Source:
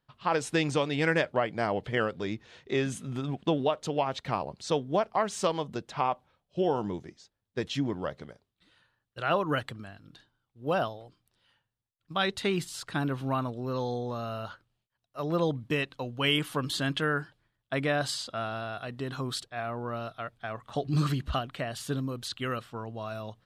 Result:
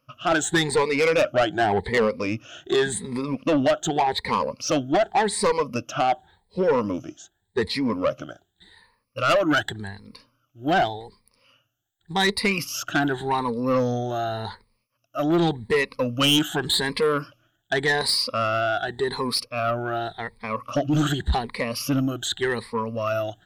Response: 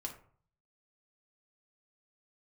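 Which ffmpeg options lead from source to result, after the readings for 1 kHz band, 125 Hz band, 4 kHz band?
+7.5 dB, +3.0 dB, +9.0 dB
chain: -af "afftfilt=real='re*pow(10,21/40*sin(2*PI*(0.91*log(max(b,1)*sr/1024/100)/log(2)-(0.87)*(pts-256)/sr)))':imag='im*pow(10,21/40*sin(2*PI*(0.91*log(max(b,1)*sr/1024/100)/log(2)-(0.87)*(pts-256)/sr)))':win_size=1024:overlap=0.75,equalizer=frequency=140:width_type=o:width=0.62:gain=-6.5,asoftclip=type=tanh:threshold=-21.5dB,volume=6.5dB"

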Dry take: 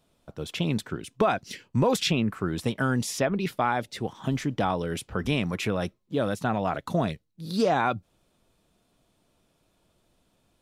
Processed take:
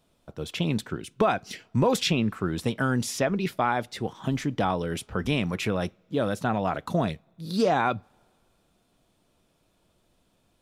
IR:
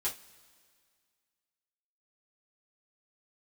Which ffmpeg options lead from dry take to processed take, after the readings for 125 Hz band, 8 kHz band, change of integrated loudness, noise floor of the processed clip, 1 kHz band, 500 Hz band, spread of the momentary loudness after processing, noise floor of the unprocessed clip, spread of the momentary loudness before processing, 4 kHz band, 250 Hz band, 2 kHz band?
0.0 dB, 0.0 dB, +0.5 dB, −69 dBFS, +0.5 dB, +0.5 dB, 8 LU, −70 dBFS, 8 LU, +0.5 dB, +0.5 dB, +0.5 dB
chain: -filter_complex "[0:a]asplit=2[link_01][link_02];[1:a]atrim=start_sample=2205,lowpass=6500[link_03];[link_02][link_03]afir=irnorm=-1:irlink=0,volume=-21dB[link_04];[link_01][link_04]amix=inputs=2:normalize=0"

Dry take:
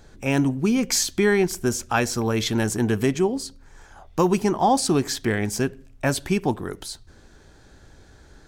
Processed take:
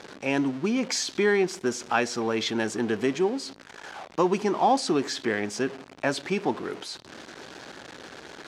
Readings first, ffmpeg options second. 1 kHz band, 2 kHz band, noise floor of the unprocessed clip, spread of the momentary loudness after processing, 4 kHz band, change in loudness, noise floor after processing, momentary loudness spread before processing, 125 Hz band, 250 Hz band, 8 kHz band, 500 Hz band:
−2.0 dB, −1.5 dB, −51 dBFS, 19 LU, −2.5 dB, −4.0 dB, −49 dBFS, 11 LU, −12.0 dB, −5.0 dB, −8.0 dB, −2.5 dB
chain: -af "aeval=exprs='val(0)+0.5*0.0266*sgn(val(0))':channel_layout=same,highpass=260,lowpass=5100,volume=-2.5dB"

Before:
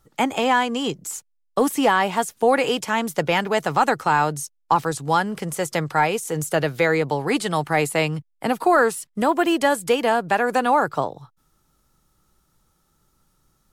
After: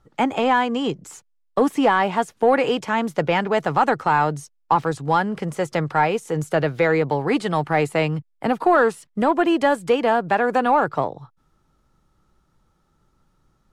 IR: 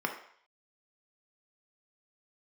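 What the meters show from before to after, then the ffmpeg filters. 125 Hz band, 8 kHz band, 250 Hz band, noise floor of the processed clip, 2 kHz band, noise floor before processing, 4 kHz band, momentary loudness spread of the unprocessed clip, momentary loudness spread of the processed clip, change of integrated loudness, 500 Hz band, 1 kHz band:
+2.0 dB, −10.5 dB, +1.5 dB, −65 dBFS, −1.0 dB, −67 dBFS, −3.5 dB, 8 LU, 7 LU, +0.5 dB, +1.0 dB, +0.5 dB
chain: -af "aeval=exprs='0.501*(cos(1*acos(clip(val(0)/0.501,-1,1)))-cos(1*PI/2))+0.0178*(cos(5*acos(clip(val(0)/0.501,-1,1)))-cos(5*PI/2))':channel_layout=same,aemphasis=mode=reproduction:type=75fm"

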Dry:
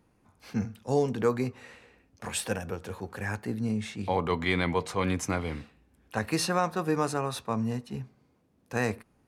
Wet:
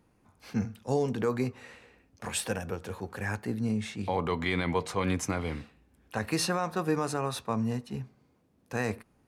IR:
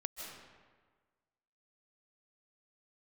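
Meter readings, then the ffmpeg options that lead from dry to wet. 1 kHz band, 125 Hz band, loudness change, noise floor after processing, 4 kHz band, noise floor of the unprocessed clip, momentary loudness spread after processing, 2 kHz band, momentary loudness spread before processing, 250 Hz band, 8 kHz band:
−2.0 dB, −0.5 dB, −1.5 dB, −68 dBFS, −0.5 dB, −68 dBFS, 10 LU, −1.5 dB, 10 LU, −0.5 dB, 0.0 dB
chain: -af "alimiter=limit=-17.5dB:level=0:latency=1:release=58"

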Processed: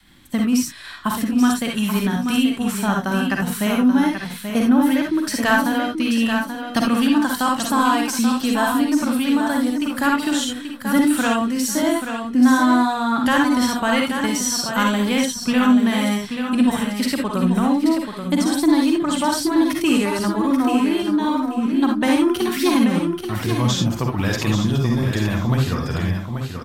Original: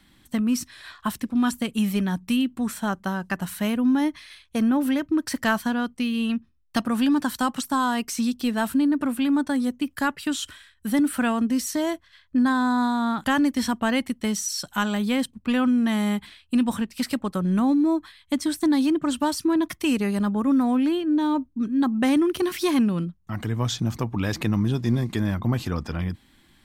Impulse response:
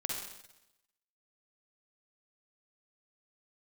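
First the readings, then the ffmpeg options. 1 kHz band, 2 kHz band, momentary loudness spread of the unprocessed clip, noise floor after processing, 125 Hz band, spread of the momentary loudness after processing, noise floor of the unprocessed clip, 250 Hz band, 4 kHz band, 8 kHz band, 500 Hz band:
+7.0 dB, +7.0 dB, 8 LU, −31 dBFS, +5.0 dB, 6 LU, −60 dBFS, +4.5 dB, +7.0 dB, +7.0 dB, +5.5 dB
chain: -filter_complex "[0:a]adynamicequalizer=threshold=0.0224:dfrequency=230:dqfactor=0.91:tfrequency=230:tqfactor=0.91:attack=5:release=100:ratio=0.375:range=3:mode=cutabove:tftype=bell,aecho=1:1:833|1666|2499:0.422|0.0928|0.0204[link_01];[1:a]atrim=start_sample=2205,atrim=end_sample=3969[link_02];[link_01][link_02]afir=irnorm=-1:irlink=0,acontrast=66,volume=-1.5dB"

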